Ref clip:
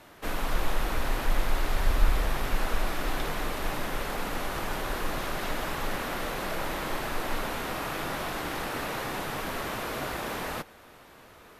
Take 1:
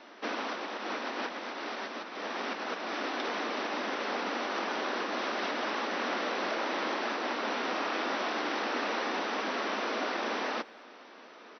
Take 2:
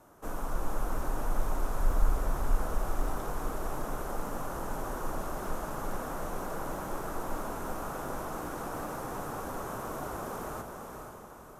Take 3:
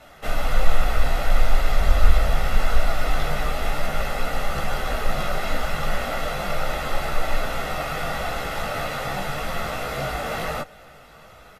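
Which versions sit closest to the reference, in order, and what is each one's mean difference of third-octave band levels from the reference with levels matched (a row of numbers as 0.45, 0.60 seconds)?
3, 2, 1; 3.0, 4.5, 11.5 decibels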